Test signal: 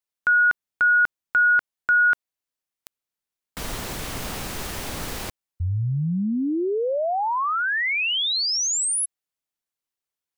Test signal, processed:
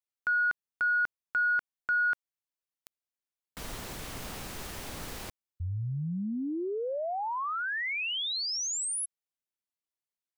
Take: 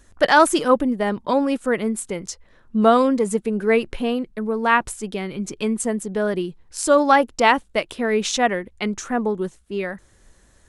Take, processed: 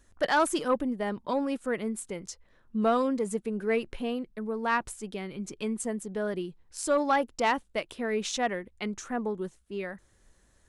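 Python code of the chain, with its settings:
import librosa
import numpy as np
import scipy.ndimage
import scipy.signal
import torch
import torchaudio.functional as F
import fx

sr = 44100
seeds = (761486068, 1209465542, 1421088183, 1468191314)

y = 10.0 ** (-5.5 / 20.0) * np.tanh(x / 10.0 ** (-5.5 / 20.0))
y = y * 10.0 ** (-9.0 / 20.0)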